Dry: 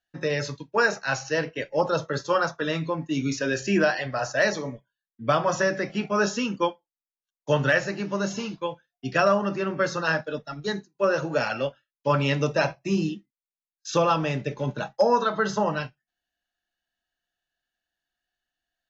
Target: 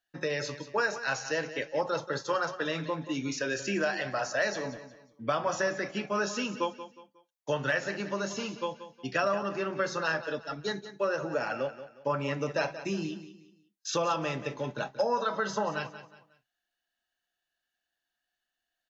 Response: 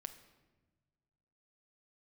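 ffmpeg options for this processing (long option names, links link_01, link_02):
-filter_complex "[0:a]asettb=1/sr,asplit=3[link_01][link_02][link_03];[link_01]atrim=end=11.164[link_04];[link_02]atrim=start=11.16:end=12.51,asetpts=PTS-STARTPTS,afade=type=in:duration=0.004:curve=qsin,afade=type=out:start_time=1.346:duration=0.004:curve=qsin,equalizer=frequency=3700:width=1.2:gain=-10.5[link_05];[link_03]atrim=start=12.506[link_06];[link_04][link_05]acrossfade=duration=0.004:curve1=hsin:curve2=qsin[link_07];[link_07][link_06]acrossfade=duration=0.004:curve1=qsin:curve2=hsin,acompressor=threshold=-29dB:ratio=2,lowshelf=frequency=200:gain=-9,asplit=2[link_08][link_09];[link_09]aecho=0:1:181|362|543:0.224|0.0761|0.0259[link_10];[link_08][link_10]amix=inputs=2:normalize=0"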